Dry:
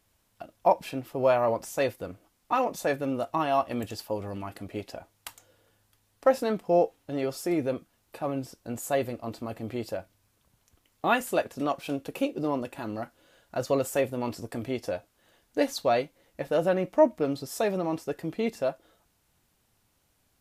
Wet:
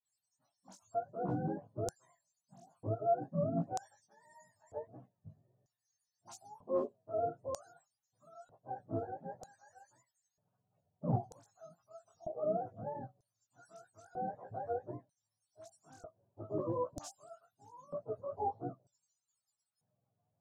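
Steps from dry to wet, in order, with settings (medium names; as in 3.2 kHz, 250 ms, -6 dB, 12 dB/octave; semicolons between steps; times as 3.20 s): spectrum inverted on a logarithmic axis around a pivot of 430 Hz; overload inside the chain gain 17 dB; phase dispersion highs, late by 53 ms, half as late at 2.8 kHz; chorus 1.6 Hz, delay 16 ms, depth 3 ms; LFO band-pass square 0.53 Hz 420–6500 Hz; FFT filter 150 Hz 0 dB, 360 Hz -24 dB, 670 Hz -1 dB, 1.4 kHz -6 dB, 2.1 kHz -15 dB, 7 kHz +9 dB; tape noise reduction on one side only decoder only; trim +12.5 dB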